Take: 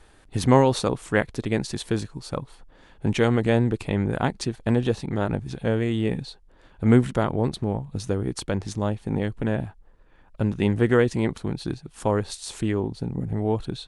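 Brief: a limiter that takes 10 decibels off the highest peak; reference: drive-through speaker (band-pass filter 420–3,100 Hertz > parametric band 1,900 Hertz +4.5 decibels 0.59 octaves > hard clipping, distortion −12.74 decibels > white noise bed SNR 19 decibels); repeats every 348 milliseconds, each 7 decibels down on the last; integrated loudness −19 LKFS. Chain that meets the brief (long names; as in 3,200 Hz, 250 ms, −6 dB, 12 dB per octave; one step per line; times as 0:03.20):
brickwall limiter −13 dBFS
band-pass filter 420–3,100 Hz
parametric band 1,900 Hz +4.5 dB 0.59 octaves
repeating echo 348 ms, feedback 45%, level −7 dB
hard clipping −22 dBFS
white noise bed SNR 19 dB
level +14 dB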